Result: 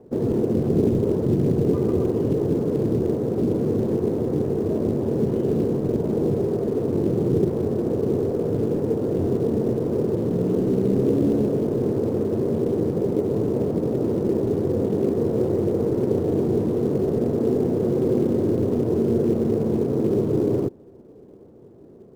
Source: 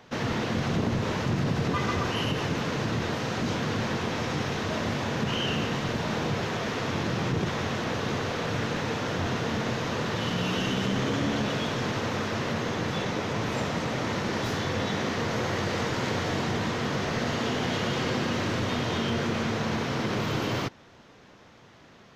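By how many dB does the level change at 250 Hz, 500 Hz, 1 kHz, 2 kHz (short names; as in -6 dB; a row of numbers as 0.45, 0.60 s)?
+8.5 dB, +10.5 dB, -8.0 dB, under -15 dB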